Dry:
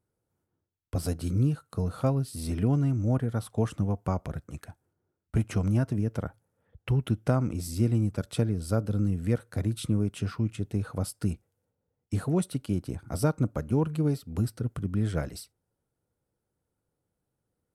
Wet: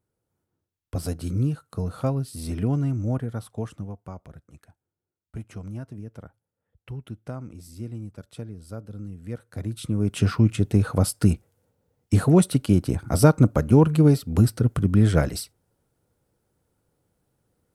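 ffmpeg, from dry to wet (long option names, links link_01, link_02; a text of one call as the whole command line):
ffmpeg -i in.wav -af "volume=21dB,afade=type=out:start_time=2.96:duration=1.07:silence=0.281838,afade=type=in:start_time=9.21:duration=0.76:silence=0.281838,afade=type=in:start_time=9.97:duration=0.25:silence=0.354813" out.wav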